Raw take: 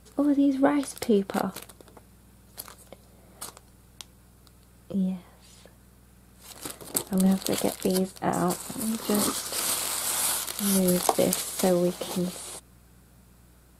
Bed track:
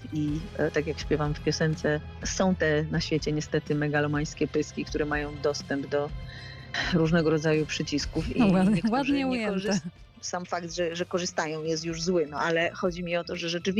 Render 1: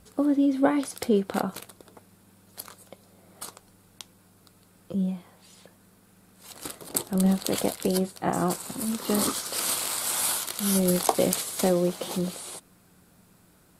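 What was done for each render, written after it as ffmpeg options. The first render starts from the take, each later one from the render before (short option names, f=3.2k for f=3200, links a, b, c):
-af "bandreject=f=60:t=h:w=4,bandreject=f=120:t=h:w=4"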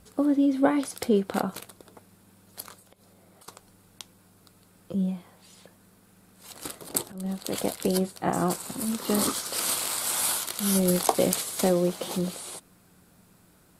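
-filter_complex "[0:a]asettb=1/sr,asplit=3[a][b][c];[a]atrim=end=2.794[d];[b]atrim=start=2.79:end=3.48,asetpts=PTS-STARTPTS,afade=t=in:d=0.004:c=qsin,afade=t=out:st=0.686:d=0.004:c=qsin,acompressor=threshold=-52dB:ratio=6:attack=3.2:release=140:knee=1:detection=peak[e];[c]atrim=start=3.476[f];[d][e]acrossfade=d=0.004:c1=hsin:c2=qsin[g];[g][f]acrossfade=d=0.004:c1=qsin:c2=hsin,asplit=2[h][i];[h]atrim=end=7.12,asetpts=PTS-STARTPTS,afade=t=out:st=7.116:d=0.004:c=hsin:silence=0.112202[j];[i]atrim=start=7.12,asetpts=PTS-STARTPTS,afade=t=in:d=0.68:silence=0.112202[k];[j][k]concat=n=2:v=0:a=1"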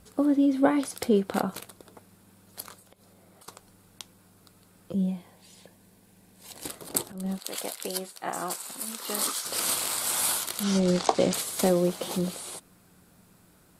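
-filter_complex "[0:a]asettb=1/sr,asplit=3[a][b][c];[a]atrim=end=4.924[d];[b]atrim=start=4.92:end=6.7,asetpts=PTS-STARTPTS,afade=t=in:d=0.004:c=qsin,afade=t=out:st=1.776:d=0.004:c=qsin,equalizer=f=1.3k:w=6.7:g=-14.5[e];[c]atrim=start=6.696[f];[d][e]acrossfade=d=0.004:c1=hsin:c2=qsin[g];[g][f]acrossfade=d=0.004:c1=qsin:c2=hsin,asettb=1/sr,asplit=3[h][i][j];[h]atrim=end=7.394[k];[i]atrim=start=7.39:end=9.45,asetpts=PTS-STARTPTS,afade=t=in:d=0.004:c=qsin,afade=t=out:st=2.056:d=0.004:c=qsin,highpass=f=1.1k:p=1[l];[j]atrim=start=9.446[m];[k][l]acrossfade=d=0.004:c1=hsin:c2=qsin[n];[n][m]acrossfade=d=0.004:c1=qsin:c2=hsin,asettb=1/sr,asplit=3[o][p][q];[o]atrim=end=10.634[r];[p]atrim=start=10.63:end=11.34,asetpts=PTS-STARTPTS,afade=t=in:d=0.004:c=qsin,afade=t=out:st=0.706:d=0.004:c=qsin,lowpass=f=6.9k:w=0.5412,lowpass=f=6.9k:w=1.3066[s];[q]atrim=start=11.336[t];[r][s]acrossfade=d=0.004:c1=hsin:c2=qsin[u];[u][t]acrossfade=d=0.004:c1=qsin:c2=hsin"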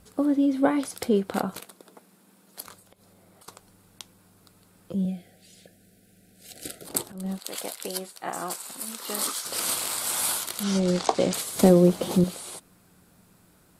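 -filter_complex "[0:a]asettb=1/sr,asplit=3[a][b][c];[a]atrim=end=1.594[d];[b]atrim=start=1.59:end=2.66,asetpts=PTS-STARTPTS,afade=t=in:d=0.004:c=qsin,afade=t=out:st=1.066:d=0.004:c=qsin,highpass=f=170:w=0.5412,highpass=f=170:w=1.3066[e];[c]atrim=start=2.656[f];[d][e]acrossfade=d=0.004:c1=hsin:c2=qsin[g];[g][f]acrossfade=d=0.004:c1=qsin:c2=hsin,asettb=1/sr,asplit=3[h][i][j];[h]atrim=end=5.054[k];[i]atrim=start=5.05:end=6.85,asetpts=PTS-STARTPTS,afade=t=in:d=0.004:c=qsin,afade=t=out:st=1.796:d=0.004:c=qsin,asuperstop=centerf=1000:order=20:qfactor=1.9[l];[j]atrim=start=6.846[m];[k][l]acrossfade=d=0.004:c1=hsin:c2=qsin[n];[n][m]acrossfade=d=0.004:c1=qsin:c2=hsin,asettb=1/sr,asplit=3[o][p][q];[o]atrim=end=11.554[r];[p]atrim=start=11.55:end=12.24,asetpts=PTS-STARTPTS,afade=t=in:d=0.004:c=qsin,afade=t=out:st=0.686:d=0.004:c=qsin,lowshelf=f=480:g=10.5[s];[q]atrim=start=12.236[t];[r][s]acrossfade=d=0.004:c1=hsin:c2=qsin[u];[u][t]acrossfade=d=0.004:c1=qsin:c2=hsin"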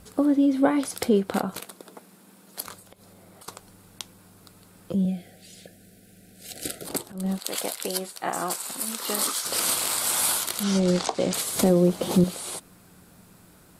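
-filter_complex "[0:a]asplit=2[a][b];[b]acompressor=threshold=-31dB:ratio=6,volume=-1dB[c];[a][c]amix=inputs=2:normalize=0,alimiter=limit=-9.5dB:level=0:latency=1:release=309"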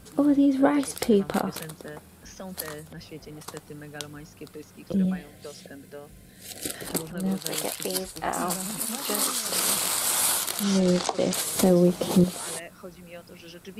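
-filter_complex "[1:a]volume=-15dB[a];[0:a][a]amix=inputs=2:normalize=0"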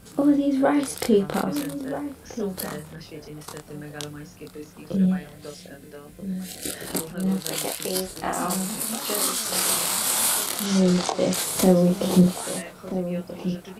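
-filter_complex "[0:a]asplit=2[a][b];[b]adelay=27,volume=-3dB[c];[a][c]amix=inputs=2:normalize=0,asplit=2[d][e];[e]adelay=1283,volume=-10dB,highshelf=f=4k:g=-28.9[f];[d][f]amix=inputs=2:normalize=0"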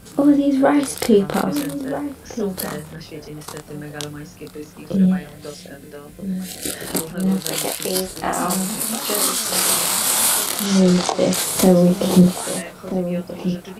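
-af "volume=5dB,alimiter=limit=-2dB:level=0:latency=1"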